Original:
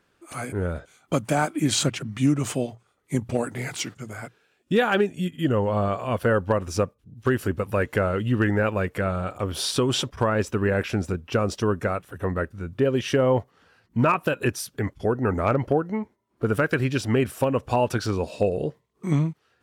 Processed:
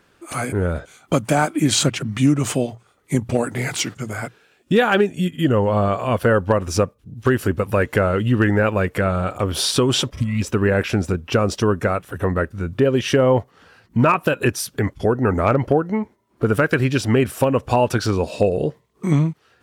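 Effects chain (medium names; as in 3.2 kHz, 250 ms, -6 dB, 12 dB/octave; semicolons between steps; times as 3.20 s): spectral replace 10.15–10.40 s, 280–1900 Hz before; in parallel at 0 dB: compression, threshold -31 dBFS, peak gain reduction 14.5 dB; on the sum: trim +3 dB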